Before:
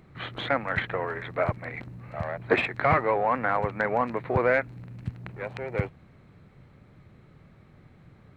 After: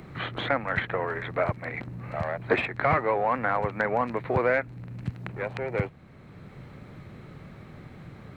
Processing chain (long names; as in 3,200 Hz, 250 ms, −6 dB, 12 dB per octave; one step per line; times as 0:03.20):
multiband upward and downward compressor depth 40%